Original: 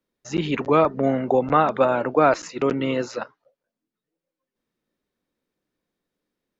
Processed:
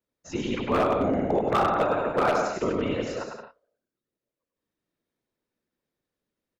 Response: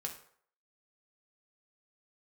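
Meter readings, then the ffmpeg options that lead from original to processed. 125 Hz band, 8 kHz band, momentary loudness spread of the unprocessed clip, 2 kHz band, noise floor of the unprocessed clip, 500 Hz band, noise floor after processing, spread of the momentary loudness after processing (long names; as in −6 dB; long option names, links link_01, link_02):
−4.5 dB, can't be measured, 10 LU, −3.0 dB, below −85 dBFS, −4.5 dB, below −85 dBFS, 12 LU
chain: -af "afftfilt=real='hypot(re,im)*cos(2*PI*random(0))':imag='hypot(re,im)*sin(2*PI*random(1))':win_size=512:overlap=0.75,aecho=1:1:100|170|219|253.3|277.3:0.631|0.398|0.251|0.158|0.1,aeval=exprs='0.168*(abs(mod(val(0)/0.168+3,4)-2)-1)':channel_layout=same"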